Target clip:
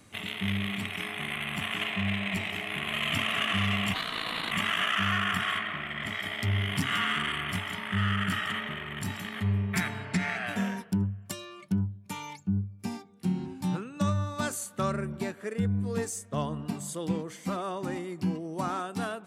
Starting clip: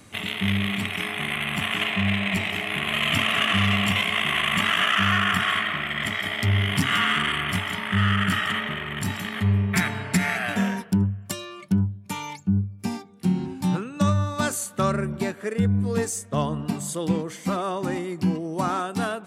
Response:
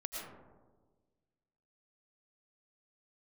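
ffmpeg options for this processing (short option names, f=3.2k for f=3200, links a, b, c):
-filter_complex "[0:a]asplit=3[a][b][c];[a]afade=t=out:st=3.93:d=0.02[d];[b]aeval=exprs='val(0)*sin(2*PI*870*n/s)':c=same,afade=t=in:st=3.93:d=0.02,afade=t=out:st=4.5:d=0.02[e];[c]afade=t=in:st=4.5:d=0.02[f];[d][e][f]amix=inputs=3:normalize=0,asettb=1/sr,asplit=3[g][h][i];[g]atrim=end=5.584[j];[h]atrim=start=5.58:end=6.09,asetpts=PTS-STARTPTS,afade=t=in:d=0.004:c=qsin,afade=t=out:st=0.506:d=0.004:c=qsin,highshelf=f=4.2k:g=-7.5[k];[i]atrim=start=6.086[l];[j][k]acrossfade=d=0.004:c1=hsin:c2=qsin[m];[m][l]acrossfade=d=0.004:c1=qsin:c2=hsin,asettb=1/sr,asplit=3[n][o][p];[n]atrim=end=10.054[q];[o]atrim=start=10.05:end=10.47,asetpts=PTS-STARTPTS,afade=t=in:d=0.004:c=qsin,afade=t=out:st=0.416:d=0.004:c=qsin,lowpass=6.2k[r];[p]atrim=start=10.466[s];[q][r]acrossfade=d=0.004:c1=hsin:c2=qsin[t];[t][s]acrossfade=d=0.004:c1=qsin:c2=hsin,volume=-6.5dB"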